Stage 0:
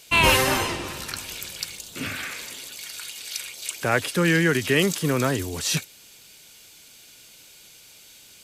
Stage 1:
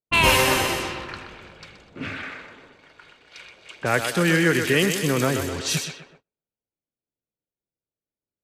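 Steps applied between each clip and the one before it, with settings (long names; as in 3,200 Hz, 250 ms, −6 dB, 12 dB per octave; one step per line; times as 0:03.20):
feedback echo with a high-pass in the loop 126 ms, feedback 61%, high-pass 230 Hz, level −7 dB
low-pass that shuts in the quiet parts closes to 480 Hz, open at −20.5 dBFS
noise gate −52 dBFS, range −33 dB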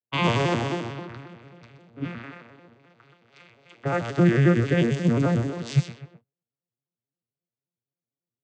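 vocoder with an arpeggio as carrier minor triad, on A#2, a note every 89 ms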